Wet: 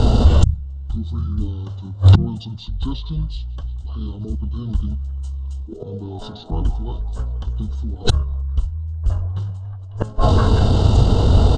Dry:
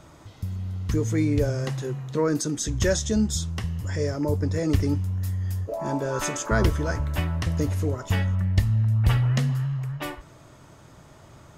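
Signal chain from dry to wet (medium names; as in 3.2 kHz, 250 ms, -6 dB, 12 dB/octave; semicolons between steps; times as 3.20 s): bass shelf 81 Hz +8 dB; repeats whose band climbs or falls 181 ms, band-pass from 1.4 kHz, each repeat 0.7 oct, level -12 dB; inverted gate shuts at -23 dBFS, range -37 dB; Butterworth band-stop 3.4 kHz, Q 1.9; hum notches 50/100/150/200/250 Hz; formant shift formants -4 st; bass shelf 440 Hz +7.5 dB; pitch shift -5.5 st; loudness maximiser +30 dB; trim -1 dB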